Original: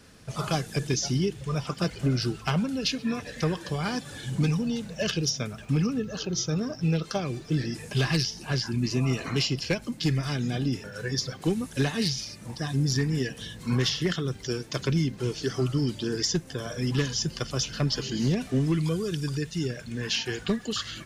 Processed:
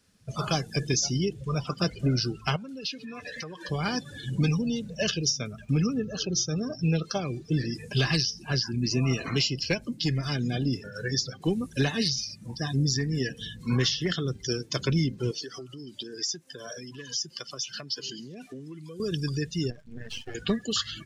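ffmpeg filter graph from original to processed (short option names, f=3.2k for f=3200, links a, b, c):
-filter_complex "[0:a]asettb=1/sr,asplit=3[a][b][c];[a]atrim=end=2.564[d];[b]atrim=start=2.56:end=3.69,asetpts=PTS-STARTPTS,afade=t=in:d=0.004:c=qsin,afade=t=out:st=1.126:d=0.004:c=qsin,acompressor=threshold=-35dB:ratio=6:attack=3.2:release=140:knee=1:detection=peak,asplit=2[e][f];[f]highpass=f=720:p=1,volume=9dB,asoftclip=type=tanh:threshold=-24dB[g];[e][g]amix=inputs=2:normalize=0,lowpass=f=6.9k:p=1,volume=-6dB[h];[c]atrim=start=3.686[i];[d][h]acrossfade=d=0.004:c1=hsin:c2=qsin[j];[j][i]acrossfade=d=0.004:c1=qsin:c2=hsin,asettb=1/sr,asplit=3[k][l][m];[k]atrim=end=15.314[n];[l]atrim=start=15.31:end=19,asetpts=PTS-STARTPTS,afade=t=in:d=0.004:c=qsin,afade=t=out:st=3.686:d=0.004:c=qsin,acompressor=threshold=-30dB:ratio=10:attack=3.2:release=140:knee=1:detection=peak,highpass=f=490:p=1[o];[m]atrim=start=18.996[p];[n][o]acrossfade=d=0.004:c1=hsin:c2=qsin[q];[q][p]acrossfade=d=0.004:c1=qsin:c2=hsin,asettb=1/sr,asplit=3[r][s][t];[r]atrim=end=19.704[u];[s]atrim=start=19.7:end=20.35,asetpts=PTS-STARTPTS,afade=t=in:d=0.004:c=qsin,afade=t=out:st=0.646:d=0.004:c=qsin,highshelf=f=4.1k:g=-10,aeval=exprs='max(val(0),0)':c=same,tremolo=f=99:d=0.519[v];[t]atrim=start=20.346[w];[u][v]acrossfade=d=0.004:c1=hsin:c2=qsin[x];[x][w]acrossfade=d=0.004:c1=qsin:c2=hsin,afftdn=nr=17:nf=-38,highshelf=f=2.9k:g=8,alimiter=limit=-15.5dB:level=0:latency=1:release=362"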